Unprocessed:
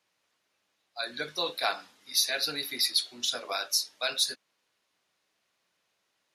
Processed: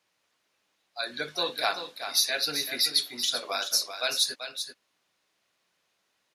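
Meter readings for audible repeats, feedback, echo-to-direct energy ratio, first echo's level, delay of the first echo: 1, no steady repeat, -9.0 dB, -9.0 dB, 0.386 s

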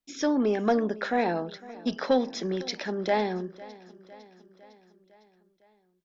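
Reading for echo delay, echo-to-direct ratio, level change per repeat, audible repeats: 0.505 s, -18.0 dB, -4.5 dB, 4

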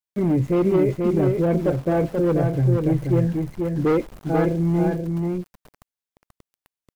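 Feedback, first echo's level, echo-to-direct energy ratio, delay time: no steady repeat, -4.0 dB, -4.0 dB, 0.484 s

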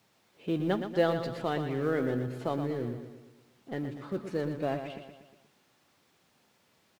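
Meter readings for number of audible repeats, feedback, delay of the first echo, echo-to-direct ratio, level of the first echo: 5, 52%, 0.119 s, -7.0 dB, -8.5 dB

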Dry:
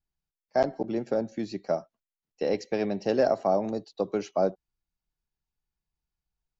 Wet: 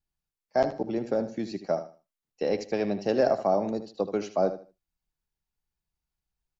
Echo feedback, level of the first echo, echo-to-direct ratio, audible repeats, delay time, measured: 24%, -11.5 dB, -11.0 dB, 2, 77 ms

